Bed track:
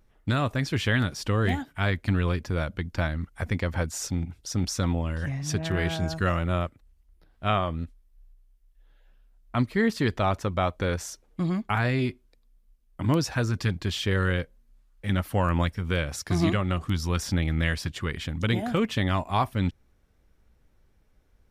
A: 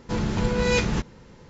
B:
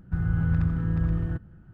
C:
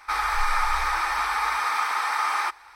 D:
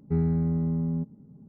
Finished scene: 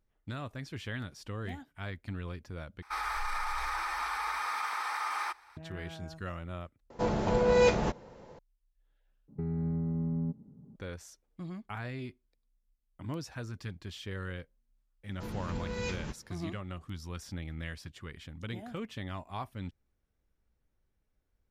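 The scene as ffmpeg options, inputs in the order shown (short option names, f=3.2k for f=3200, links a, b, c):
-filter_complex "[1:a]asplit=2[a][b];[0:a]volume=-14.5dB[c];[3:a]alimiter=limit=-16dB:level=0:latency=1:release=16[d];[a]equalizer=f=650:w=1:g=14.5[e];[4:a]alimiter=limit=-23dB:level=0:latency=1:release=173[f];[c]asplit=4[g][h][i][j];[g]atrim=end=2.824[k];[d]atrim=end=2.75,asetpts=PTS-STARTPTS,volume=-9dB[l];[h]atrim=start=5.566:end=6.904[m];[e]atrim=end=1.49,asetpts=PTS-STARTPTS,volume=-8.5dB[n];[i]atrim=start=8.386:end=9.284[o];[f]atrim=end=1.48,asetpts=PTS-STARTPTS,volume=-3.5dB[p];[j]atrim=start=10.756[q];[b]atrim=end=1.49,asetpts=PTS-STARTPTS,volume=-14.5dB,afade=t=in:d=0.004:c=hsin,afade=t=out:st=1.486:d=0.004:c=hsin,adelay=15110[r];[k][l]acrossfade=d=0.004:c1=hsin:c2=hsin[s];[s][m]acrossfade=d=0.004:c1=hsin:c2=hsin[t];[t][n]acrossfade=d=0.004:c1=hsin:c2=hsin[u];[u][o]acrossfade=d=0.004:c1=hsin:c2=hsin[v];[v][p]acrossfade=d=0.004:c1=hsin:c2=hsin[w];[w][q]acrossfade=d=0.004:c1=hsin:c2=hsin[x];[x][r]amix=inputs=2:normalize=0"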